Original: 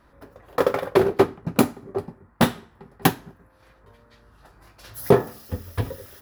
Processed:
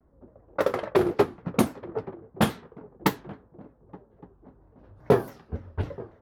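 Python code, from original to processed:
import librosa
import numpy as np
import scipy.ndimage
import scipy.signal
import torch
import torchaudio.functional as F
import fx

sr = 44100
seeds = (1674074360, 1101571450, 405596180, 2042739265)

y = fx.echo_swing(x, sr, ms=1173, ratio=3, feedback_pct=36, wet_db=-20)
y = fx.env_lowpass(y, sr, base_hz=530.0, full_db=-16.5)
y = fx.vibrato_shape(y, sr, shape='saw_down', rate_hz=3.6, depth_cents=250.0)
y = y * librosa.db_to_amplitude(-4.0)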